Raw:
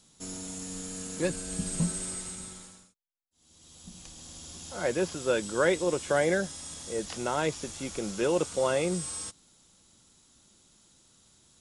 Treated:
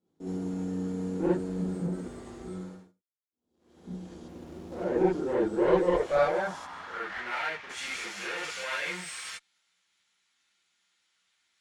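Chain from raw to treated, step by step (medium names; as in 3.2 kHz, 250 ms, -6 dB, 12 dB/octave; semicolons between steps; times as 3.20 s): 6.58–7.69 s: low-pass 2.8 kHz -> 1.2 kHz 12 dB/octave; in parallel at -11 dB: fuzz box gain 46 dB, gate -51 dBFS; 2.00–2.44 s: on the sum: frequency shift -130 Hz; band-pass sweep 350 Hz -> 2.2 kHz, 5.45–7.36 s; Chebyshev shaper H 2 -9 dB, 8 -26 dB, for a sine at -14 dBFS; gated-style reverb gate 90 ms rising, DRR -7.5 dB; 4.28–4.85 s: sliding maximum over 9 samples; trim -7 dB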